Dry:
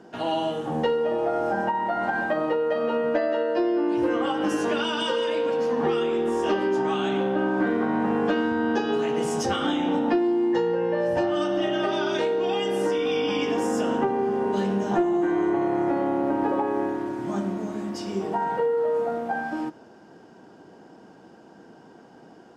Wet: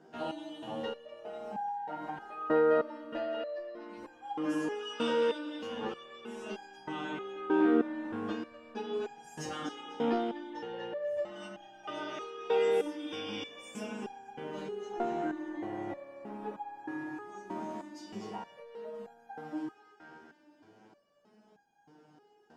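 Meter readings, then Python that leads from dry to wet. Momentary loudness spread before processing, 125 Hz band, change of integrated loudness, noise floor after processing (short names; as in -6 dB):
5 LU, -15.0 dB, -11.0 dB, -64 dBFS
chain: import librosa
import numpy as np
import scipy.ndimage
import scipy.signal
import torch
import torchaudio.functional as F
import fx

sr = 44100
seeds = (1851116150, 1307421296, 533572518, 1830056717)

y = fx.echo_banded(x, sr, ms=245, feedback_pct=67, hz=2300.0, wet_db=-4.0)
y = fx.resonator_held(y, sr, hz=3.2, low_hz=78.0, high_hz=810.0)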